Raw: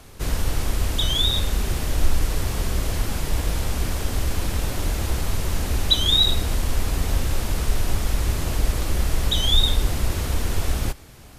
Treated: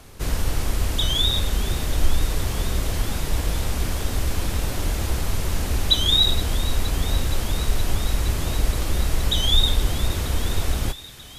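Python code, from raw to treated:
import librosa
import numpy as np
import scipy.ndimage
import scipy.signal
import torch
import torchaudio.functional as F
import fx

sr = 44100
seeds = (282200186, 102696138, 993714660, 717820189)

y = fx.echo_wet_highpass(x, sr, ms=469, feedback_pct=82, hz=1700.0, wet_db=-17.0)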